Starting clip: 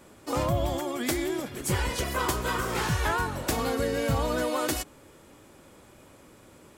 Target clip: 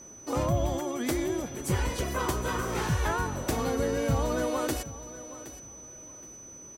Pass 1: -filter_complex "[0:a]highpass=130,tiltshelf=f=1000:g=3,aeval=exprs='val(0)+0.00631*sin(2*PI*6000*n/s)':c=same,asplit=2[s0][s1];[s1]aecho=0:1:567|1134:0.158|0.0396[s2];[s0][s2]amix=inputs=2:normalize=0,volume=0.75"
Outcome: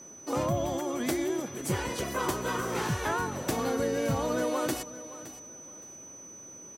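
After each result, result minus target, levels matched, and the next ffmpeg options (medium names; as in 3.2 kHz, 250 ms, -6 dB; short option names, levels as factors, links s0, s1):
echo 203 ms early; 125 Hz band -3.5 dB
-filter_complex "[0:a]highpass=130,tiltshelf=f=1000:g=3,aeval=exprs='val(0)+0.00631*sin(2*PI*6000*n/s)':c=same,asplit=2[s0][s1];[s1]aecho=0:1:770|1540:0.158|0.0396[s2];[s0][s2]amix=inputs=2:normalize=0,volume=0.75"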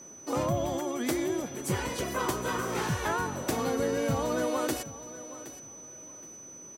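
125 Hz band -3.5 dB
-filter_complex "[0:a]tiltshelf=f=1000:g=3,aeval=exprs='val(0)+0.00631*sin(2*PI*6000*n/s)':c=same,asplit=2[s0][s1];[s1]aecho=0:1:770|1540:0.158|0.0396[s2];[s0][s2]amix=inputs=2:normalize=0,volume=0.75"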